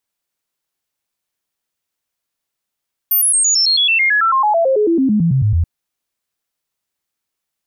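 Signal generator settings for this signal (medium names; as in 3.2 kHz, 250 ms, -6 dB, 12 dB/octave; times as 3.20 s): stepped sine 13.5 kHz down, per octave 3, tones 23, 0.11 s, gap 0.00 s -10.5 dBFS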